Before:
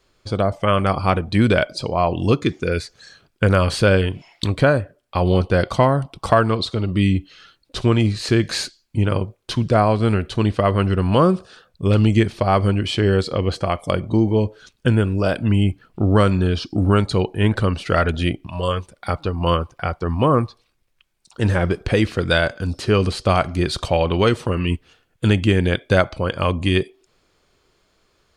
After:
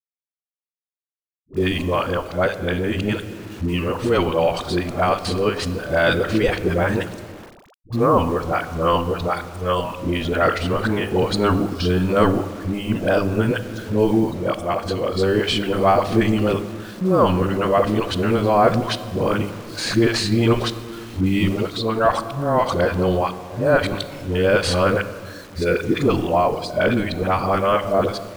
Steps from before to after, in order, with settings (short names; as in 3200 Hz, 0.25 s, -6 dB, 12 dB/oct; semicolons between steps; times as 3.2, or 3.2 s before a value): whole clip reversed; in parallel at +1.5 dB: level quantiser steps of 11 dB; on the sum: gate -48 dBFS, range -15 dB; transient shaper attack +2 dB, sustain +7 dB; bell 83 Hz -10 dB 3 oct; de-hum 100.3 Hz, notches 5; on a send at -11 dB: reverb RT60 2.0 s, pre-delay 4 ms; on the sum: bit-crush 6-bit; AGC; high shelf 2200 Hz -8.5 dB; dispersion highs, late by 83 ms, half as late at 510 Hz; gain -1.5 dB